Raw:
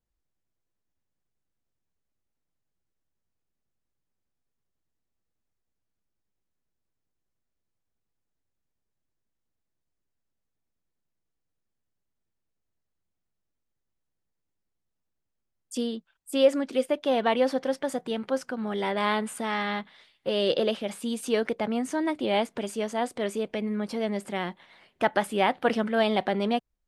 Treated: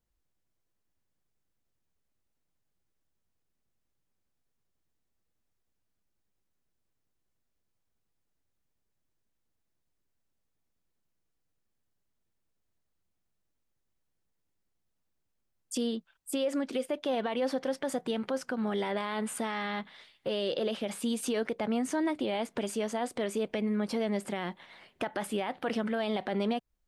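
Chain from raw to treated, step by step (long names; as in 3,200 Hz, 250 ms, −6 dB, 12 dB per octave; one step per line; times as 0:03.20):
in parallel at +1 dB: downward compressor, threshold −32 dBFS, peak gain reduction 16.5 dB
on the sum: brickwall limiter −18 dBFS, peak gain reduction 11.5 dB
level −4.5 dB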